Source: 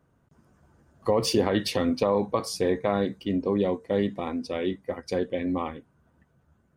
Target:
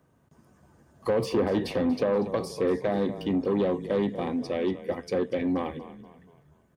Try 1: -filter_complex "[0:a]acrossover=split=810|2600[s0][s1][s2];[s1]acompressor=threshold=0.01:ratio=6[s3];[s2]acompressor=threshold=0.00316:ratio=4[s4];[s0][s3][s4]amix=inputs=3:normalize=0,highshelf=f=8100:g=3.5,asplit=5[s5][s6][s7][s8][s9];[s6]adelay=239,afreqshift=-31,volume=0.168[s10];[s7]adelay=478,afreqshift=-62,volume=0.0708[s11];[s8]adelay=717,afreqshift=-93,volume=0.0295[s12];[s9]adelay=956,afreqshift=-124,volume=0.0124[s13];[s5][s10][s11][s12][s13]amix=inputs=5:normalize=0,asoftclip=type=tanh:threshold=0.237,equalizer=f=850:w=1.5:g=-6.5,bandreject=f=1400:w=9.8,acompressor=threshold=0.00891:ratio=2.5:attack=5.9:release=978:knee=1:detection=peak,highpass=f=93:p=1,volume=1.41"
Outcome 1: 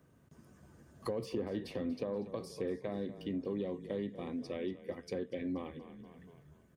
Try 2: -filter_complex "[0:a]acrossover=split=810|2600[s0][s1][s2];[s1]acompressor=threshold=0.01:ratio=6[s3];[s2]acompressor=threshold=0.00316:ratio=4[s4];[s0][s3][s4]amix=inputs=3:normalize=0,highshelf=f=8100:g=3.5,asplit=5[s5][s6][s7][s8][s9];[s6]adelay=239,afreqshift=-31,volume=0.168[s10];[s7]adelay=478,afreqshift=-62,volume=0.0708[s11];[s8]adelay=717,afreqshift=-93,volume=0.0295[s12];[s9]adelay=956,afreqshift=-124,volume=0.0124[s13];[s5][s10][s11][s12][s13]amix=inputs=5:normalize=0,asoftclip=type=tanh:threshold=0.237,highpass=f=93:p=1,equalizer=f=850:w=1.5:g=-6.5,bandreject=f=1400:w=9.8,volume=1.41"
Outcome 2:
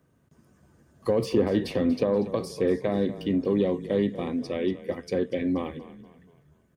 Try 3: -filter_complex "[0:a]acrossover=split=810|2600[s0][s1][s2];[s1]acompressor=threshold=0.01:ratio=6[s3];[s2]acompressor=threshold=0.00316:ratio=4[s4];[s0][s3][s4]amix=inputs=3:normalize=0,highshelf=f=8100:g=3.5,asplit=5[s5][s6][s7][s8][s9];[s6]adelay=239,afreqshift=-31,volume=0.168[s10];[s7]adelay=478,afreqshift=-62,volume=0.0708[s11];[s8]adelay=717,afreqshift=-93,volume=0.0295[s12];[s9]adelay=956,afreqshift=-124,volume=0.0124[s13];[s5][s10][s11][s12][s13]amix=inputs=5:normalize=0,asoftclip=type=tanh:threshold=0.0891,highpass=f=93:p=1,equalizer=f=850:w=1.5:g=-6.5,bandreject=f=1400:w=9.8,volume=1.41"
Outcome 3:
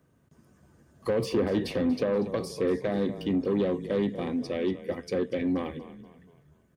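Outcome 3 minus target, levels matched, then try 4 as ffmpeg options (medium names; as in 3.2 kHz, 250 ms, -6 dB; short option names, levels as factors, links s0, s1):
1 kHz band -4.0 dB
-filter_complex "[0:a]acrossover=split=810|2600[s0][s1][s2];[s1]acompressor=threshold=0.01:ratio=6[s3];[s2]acompressor=threshold=0.00316:ratio=4[s4];[s0][s3][s4]amix=inputs=3:normalize=0,highshelf=f=8100:g=3.5,asplit=5[s5][s6][s7][s8][s9];[s6]adelay=239,afreqshift=-31,volume=0.168[s10];[s7]adelay=478,afreqshift=-62,volume=0.0708[s11];[s8]adelay=717,afreqshift=-93,volume=0.0295[s12];[s9]adelay=956,afreqshift=-124,volume=0.0124[s13];[s5][s10][s11][s12][s13]amix=inputs=5:normalize=0,asoftclip=type=tanh:threshold=0.0891,highpass=f=93:p=1,bandreject=f=1400:w=9.8,volume=1.41"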